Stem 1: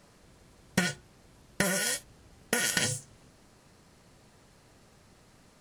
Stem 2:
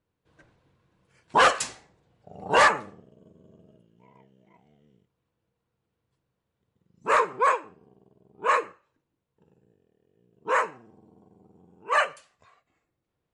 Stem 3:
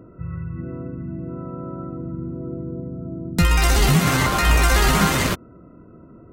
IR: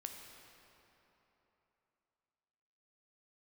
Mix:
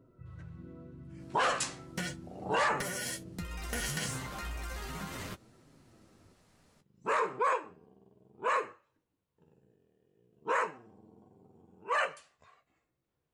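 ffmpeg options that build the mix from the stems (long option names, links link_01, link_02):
-filter_complex "[0:a]asoftclip=type=tanh:threshold=-21dB,adelay=1200,volume=-3dB[link_01];[1:a]volume=1dB[link_02];[2:a]acompressor=threshold=-19dB:ratio=10,volume=-14dB[link_03];[link_01][link_02][link_03]amix=inputs=3:normalize=0,flanger=delay=7.3:depth=8.7:regen=-31:speed=0.35:shape=triangular,alimiter=limit=-21dB:level=0:latency=1:release=11"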